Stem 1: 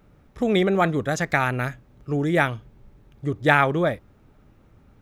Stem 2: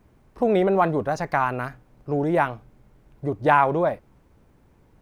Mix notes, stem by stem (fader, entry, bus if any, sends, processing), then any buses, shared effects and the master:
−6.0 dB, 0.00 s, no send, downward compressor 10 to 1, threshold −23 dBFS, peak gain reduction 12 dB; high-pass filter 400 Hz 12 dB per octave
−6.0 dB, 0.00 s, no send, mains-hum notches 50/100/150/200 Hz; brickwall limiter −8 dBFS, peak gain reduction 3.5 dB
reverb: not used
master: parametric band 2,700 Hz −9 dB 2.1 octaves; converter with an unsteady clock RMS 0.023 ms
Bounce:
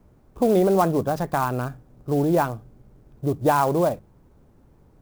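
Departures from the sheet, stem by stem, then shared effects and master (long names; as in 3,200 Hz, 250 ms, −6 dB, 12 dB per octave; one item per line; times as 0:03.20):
stem 1: missing high-pass filter 400 Hz 12 dB per octave
stem 2 −6.0 dB → +1.5 dB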